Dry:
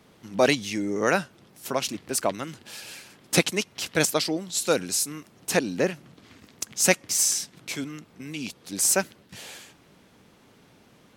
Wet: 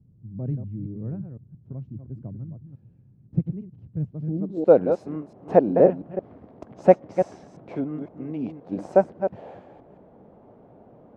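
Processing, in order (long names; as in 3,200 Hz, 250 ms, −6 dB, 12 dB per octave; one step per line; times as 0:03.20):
delay that plays each chunk backwards 172 ms, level −8 dB
low-pass filter sweep 120 Hz → 670 Hz, 0:04.21–0:04.73
level +3.5 dB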